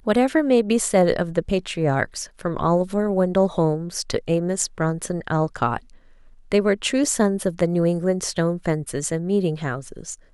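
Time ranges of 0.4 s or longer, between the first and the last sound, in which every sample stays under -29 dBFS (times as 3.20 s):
5.77–6.52 s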